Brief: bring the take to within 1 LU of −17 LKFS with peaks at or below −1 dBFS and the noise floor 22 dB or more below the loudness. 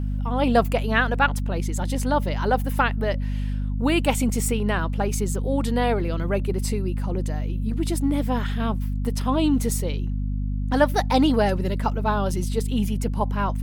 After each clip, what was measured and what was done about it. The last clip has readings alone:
mains hum 50 Hz; hum harmonics up to 250 Hz; level of the hum −23 dBFS; integrated loudness −24.0 LKFS; sample peak −5.5 dBFS; target loudness −17.0 LKFS
→ mains-hum notches 50/100/150/200/250 Hz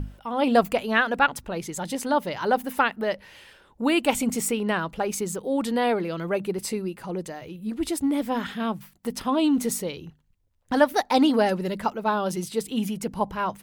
mains hum none found; integrated loudness −25.5 LKFS; sample peak −7.0 dBFS; target loudness −17.0 LKFS
→ level +8.5 dB
brickwall limiter −1 dBFS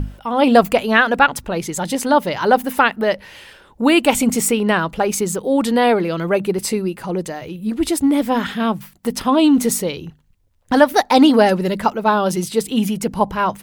integrated loudness −17.5 LKFS; sample peak −1.0 dBFS; background noise floor −52 dBFS

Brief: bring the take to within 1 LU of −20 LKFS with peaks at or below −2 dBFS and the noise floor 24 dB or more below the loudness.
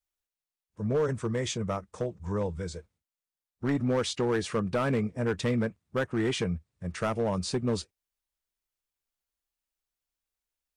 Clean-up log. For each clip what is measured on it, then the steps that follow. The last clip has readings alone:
share of clipped samples 1.4%; peaks flattened at −21.5 dBFS; integrated loudness −30.5 LKFS; sample peak −21.5 dBFS; target loudness −20.0 LKFS
→ clipped peaks rebuilt −21.5 dBFS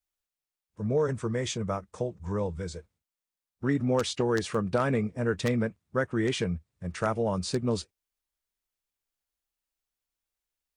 share of clipped samples 0.0%; integrated loudness −30.0 LKFS; sample peak −12.5 dBFS; target loudness −20.0 LKFS
→ level +10 dB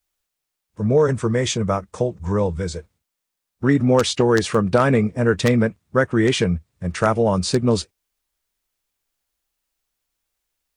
integrated loudness −20.0 LKFS; sample peak −2.5 dBFS; background noise floor −81 dBFS

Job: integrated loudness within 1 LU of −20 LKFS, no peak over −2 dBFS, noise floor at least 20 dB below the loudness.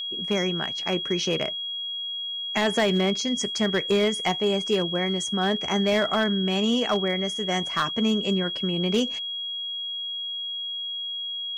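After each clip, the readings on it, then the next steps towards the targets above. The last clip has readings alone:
share of clipped samples 0.5%; peaks flattened at −15.5 dBFS; interfering tone 3,300 Hz; level of the tone −29 dBFS; integrated loudness −25.0 LKFS; sample peak −15.5 dBFS; target loudness −20.0 LKFS
→ clipped peaks rebuilt −15.5 dBFS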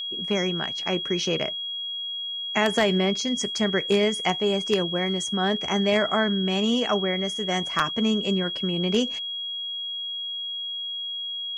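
share of clipped samples 0.0%; interfering tone 3,300 Hz; level of the tone −29 dBFS
→ notch filter 3,300 Hz, Q 30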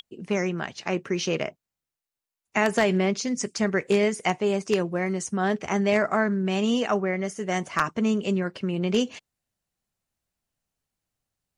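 interfering tone none found; integrated loudness −25.5 LKFS; sample peak −6.5 dBFS; target loudness −20.0 LKFS
→ level +5.5 dB
brickwall limiter −2 dBFS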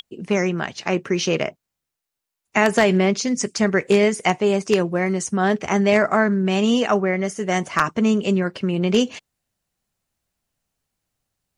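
integrated loudness −20.0 LKFS; sample peak −2.0 dBFS; background noise floor −83 dBFS

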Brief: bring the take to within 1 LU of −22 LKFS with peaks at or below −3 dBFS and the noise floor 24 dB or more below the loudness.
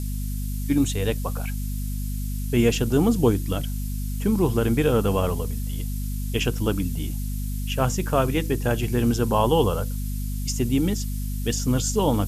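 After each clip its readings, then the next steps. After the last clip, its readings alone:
mains hum 50 Hz; hum harmonics up to 250 Hz; level of the hum −25 dBFS; background noise floor −28 dBFS; target noise floor −49 dBFS; integrated loudness −24.5 LKFS; sample peak −8.0 dBFS; target loudness −22.0 LKFS
→ mains-hum notches 50/100/150/200/250 Hz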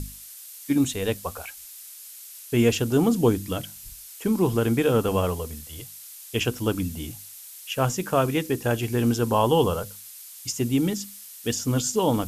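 mains hum none found; background noise floor −43 dBFS; target noise floor −49 dBFS
→ broadband denoise 6 dB, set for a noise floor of −43 dBFS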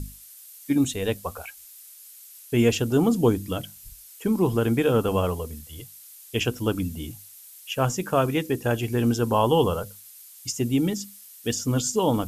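background noise floor −47 dBFS; target noise floor −49 dBFS
→ broadband denoise 6 dB, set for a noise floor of −47 dBFS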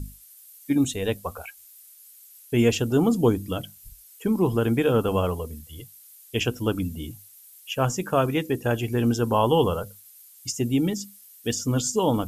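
background noise floor −51 dBFS; integrated loudness −24.5 LKFS; sample peak −8.5 dBFS; target loudness −22.0 LKFS
→ level +2.5 dB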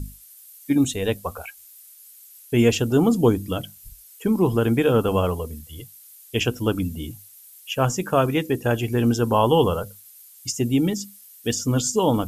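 integrated loudness −22.0 LKFS; sample peak −6.0 dBFS; background noise floor −48 dBFS

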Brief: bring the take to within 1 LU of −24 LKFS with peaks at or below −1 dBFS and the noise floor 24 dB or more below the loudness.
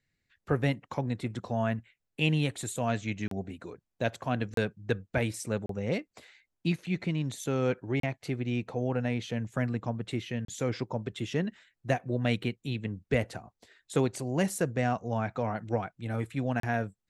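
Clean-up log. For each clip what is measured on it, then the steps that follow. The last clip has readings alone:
number of dropouts 6; longest dropout 33 ms; integrated loudness −32.0 LKFS; sample peak −12.0 dBFS; target loudness −24.0 LKFS
→ repair the gap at 0:03.28/0:04.54/0:05.66/0:08.00/0:10.45/0:16.60, 33 ms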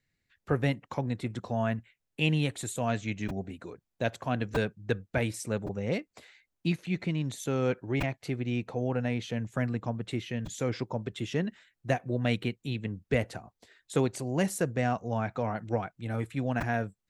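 number of dropouts 0; integrated loudness −32.0 LKFS; sample peak −12.0 dBFS; target loudness −24.0 LKFS
→ level +8 dB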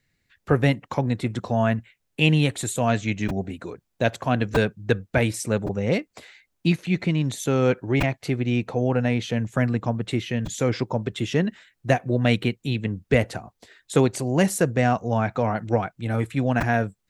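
integrated loudness −24.0 LKFS; sample peak −4.0 dBFS; background noise floor −75 dBFS

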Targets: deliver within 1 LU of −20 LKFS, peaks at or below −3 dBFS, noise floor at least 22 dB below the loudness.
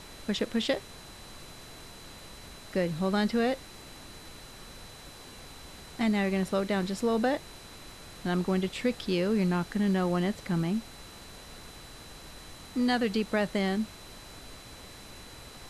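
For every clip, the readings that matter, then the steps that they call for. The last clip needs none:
interfering tone 4,000 Hz; level of the tone −53 dBFS; background noise floor −48 dBFS; target noise floor −52 dBFS; integrated loudness −29.5 LKFS; sample peak −15.0 dBFS; target loudness −20.0 LKFS
→ notch filter 4,000 Hz, Q 30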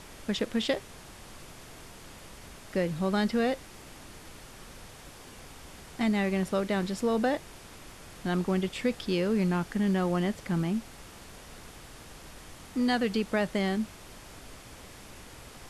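interfering tone none found; background noise floor −49 dBFS; target noise floor −52 dBFS
→ noise reduction from a noise print 6 dB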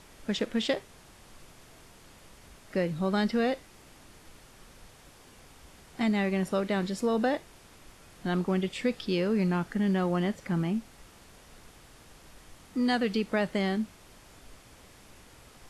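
background noise floor −55 dBFS; integrated loudness −29.5 LKFS; sample peak −15.0 dBFS; target loudness −20.0 LKFS
→ level +9.5 dB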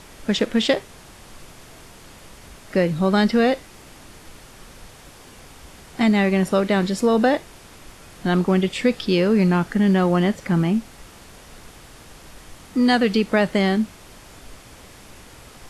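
integrated loudness −20.0 LKFS; sample peak −5.5 dBFS; background noise floor −45 dBFS

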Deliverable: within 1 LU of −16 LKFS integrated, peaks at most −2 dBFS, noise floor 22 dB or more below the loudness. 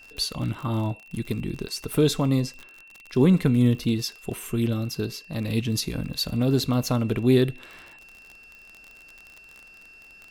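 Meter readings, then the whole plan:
crackle rate 40 per second; interfering tone 2,700 Hz; level of the tone −47 dBFS; integrated loudness −25.0 LKFS; sample peak −7.0 dBFS; target loudness −16.0 LKFS
→ click removal
notch filter 2,700 Hz, Q 30
level +9 dB
brickwall limiter −2 dBFS

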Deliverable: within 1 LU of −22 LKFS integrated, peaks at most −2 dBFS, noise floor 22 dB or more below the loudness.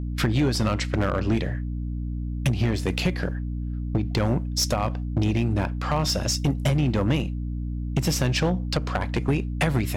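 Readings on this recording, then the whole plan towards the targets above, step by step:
share of clipped samples 1.8%; peaks flattened at −16.0 dBFS; mains hum 60 Hz; hum harmonics up to 300 Hz; level of the hum −27 dBFS; integrated loudness −25.5 LKFS; sample peak −16.0 dBFS; target loudness −22.0 LKFS
→ clipped peaks rebuilt −16 dBFS
hum removal 60 Hz, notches 5
level +3.5 dB

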